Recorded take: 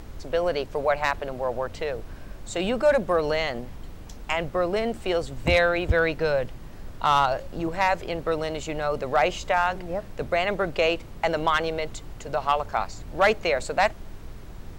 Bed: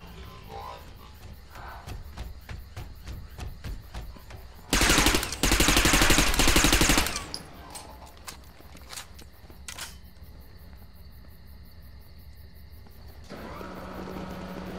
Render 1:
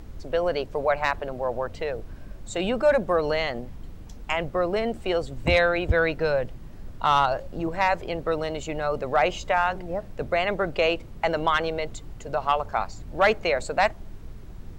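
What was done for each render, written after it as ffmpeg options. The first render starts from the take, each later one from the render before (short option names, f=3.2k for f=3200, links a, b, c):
-af "afftdn=nr=6:nf=-41"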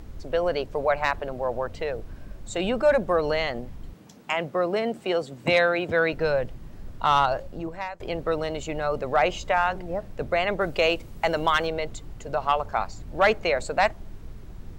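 -filter_complex "[0:a]asettb=1/sr,asplit=3[a][b][c];[a]atrim=end=3.934[d];[b]atrim=start=3.93:end=6.13,asetpts=PTS-STARTPTS,afade=t=in:d=0.004:c=qsin,afade=t=out:st=2.196:d=0.004:c=qsin,highpass=f=140:w=0.5412,highpass=f=140:w=1.3066[e];[c]atrim=start=6.126[f];[d][e]acrossfade=d=0.004:c1=hsin:c2=qsin[g];[g][f]acrossfade=d=0.004:c1=qsin:c2=hsin,asettb=1/sr,asplit=3[h][i][j];[h]atrim=end=10.614[k];[i]atrim=start=10.61:end=11.67,asetpts=PTS-STARTPTS,afade=t=in:d=0.004:c=qsin,afade=t=out:st=1.056:d=0.004:c=qsin,highshelf=f=5.4k:g=9[l];[j]atrim=start=11.666[m];[k][l]acrossfade=d=0.004:c1=hsin:c2=qsin[n];[n][m]acrossfade=d=0.004:c1=qsin:c2=hsin,asplit=2[o][p];[o]atrim=end=8,asetpts=PTS-STARTPTS,afade=t=out:st=7.38:d=0.62:silence=0.0707946[q];[p]atrim=start=8,asetpts=PTS-STARTPTS,afade=t=in:d=0.004:c=hsin:silence=0.0707946[r];[q][r]concat=n=2:v=0:a=1"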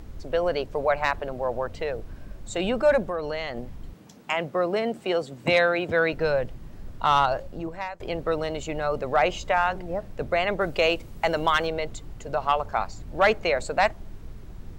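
-filter_complex "[0:a]asettb=1/sr,asplit=3[a][b][c];[a]atrim=end=3.024[d];[b]atrim=start=3.02:end=3.57,asetpts=PTS-STARTPTS,afade=t=in:d=0.004:c=qsin,afade=t=out:st=0.546:d=0.004:c=qsin,acompressor=threshold=-30dB:ratio=2:attack=3.2:release=140:knee=1:detection=peak[e];[c]atrim=start=3.566[f];[d][e]acrossfade=d=0.004:c1=hsin:c2=qsin[g];[g][f]acrossfade=d=0.004:c1=qsin:c2=hsin"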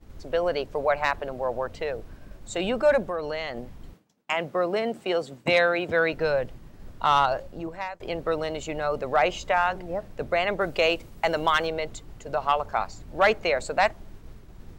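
-af "agate=range=-33dB:threshold=-36dB:ratio=3:detection=peak,lowshelf=f=190:g=-4.5"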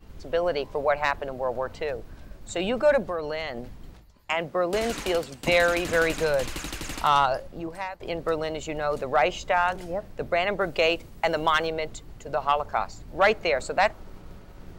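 -filter_complex "[1:a]volume=-14dB[a];[0:a][a]amix=inputs=2:normalize=0"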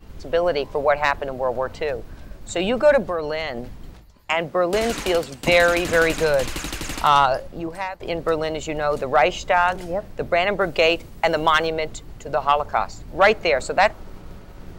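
-af "volume=5dB"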